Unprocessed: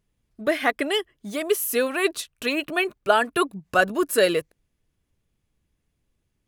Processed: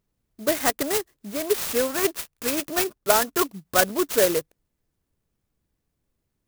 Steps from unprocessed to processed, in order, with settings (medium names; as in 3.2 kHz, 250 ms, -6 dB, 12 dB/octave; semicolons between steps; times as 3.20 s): bass shelf 160 Hz -5 dB; sampling jitter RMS 0.1 ms